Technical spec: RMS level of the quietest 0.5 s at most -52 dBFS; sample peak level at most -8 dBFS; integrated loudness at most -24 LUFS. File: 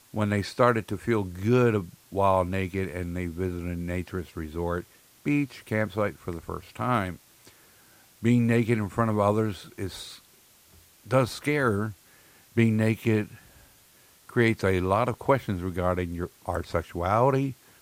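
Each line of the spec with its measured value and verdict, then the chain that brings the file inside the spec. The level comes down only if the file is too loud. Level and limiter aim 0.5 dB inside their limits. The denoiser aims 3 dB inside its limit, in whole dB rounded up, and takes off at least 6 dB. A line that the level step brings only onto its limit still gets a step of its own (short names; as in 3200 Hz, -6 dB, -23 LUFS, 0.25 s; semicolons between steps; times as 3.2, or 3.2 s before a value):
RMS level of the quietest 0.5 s -58 dBFS: OK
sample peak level -6.5 dBFS: fail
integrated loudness -27.0 LUFS: OK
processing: limiter -8.5 dBFS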